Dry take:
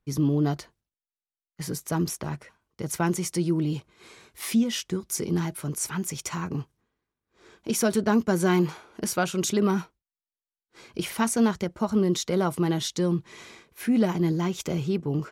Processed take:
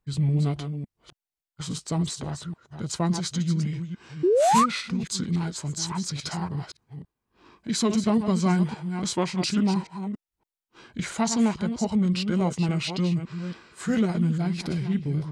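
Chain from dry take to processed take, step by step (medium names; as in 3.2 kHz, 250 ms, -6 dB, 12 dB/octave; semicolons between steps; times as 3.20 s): chunks repeated in reverse 282 ms, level -8.5 dB; formant shift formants -6 st; painted sound rise, 4.23–4.66 s, 330–1300 Hz -19 dBFS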